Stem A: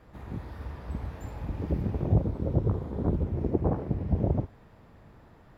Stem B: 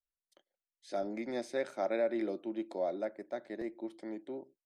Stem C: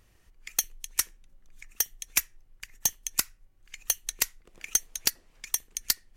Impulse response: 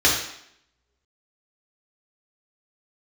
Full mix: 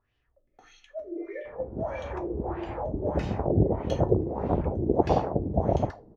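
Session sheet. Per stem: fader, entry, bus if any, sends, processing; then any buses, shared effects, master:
−2.0 dB, 1.45 s, no send, parametric band 740 Hz +13 dB 1.4 octaves
−4.5 dB, 0.00 s, send −8.5 dB, three sine waves on the formant tracks; volume swells 265 ms; brickwall limiter −37 dBFS, peak gain reduction 11 dB
−18.0 dB, 0.00 s, send −14 dB, no processing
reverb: on, RT60 0.70 s, pre-delay 3 ms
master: auto-filter low-pass sine 1.6 Hz 310–3,200 Hz

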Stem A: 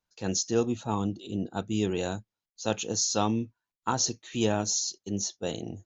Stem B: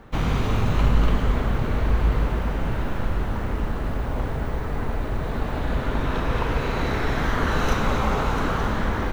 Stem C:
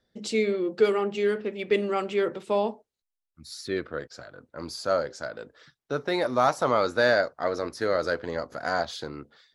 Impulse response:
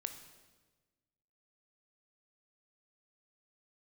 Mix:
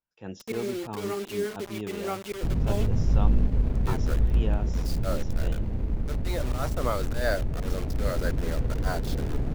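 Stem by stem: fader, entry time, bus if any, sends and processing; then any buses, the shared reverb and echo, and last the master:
−7.5 dB, 0.00 s, no send, Savitzky-Golay smoothing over 25 samples
−10.5 dB, 2.30 s, no send, running median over 41 samples; low-shelf EQ 340 Hz +9 dB
−4.0 dB, 0.15 s, no send, volume swells 116 ms; rotating-speaker cabinet horn 5 Hz; bit reduction 6 bits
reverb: not used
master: no processing

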